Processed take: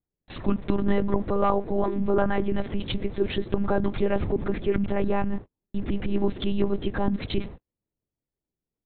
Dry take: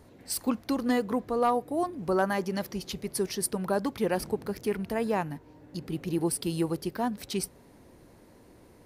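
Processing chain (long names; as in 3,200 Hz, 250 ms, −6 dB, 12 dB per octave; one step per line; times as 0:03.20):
noise gate −43 dBFS, range −50 dB
low-shelf EQ 240 Hz +10 dB
in parallel at −1 dB: compressor whose output falls as the input rises −33 dBFS, ratio −1
on the sum: one-pitch LPC vocoder at 8 kHz 200 Hz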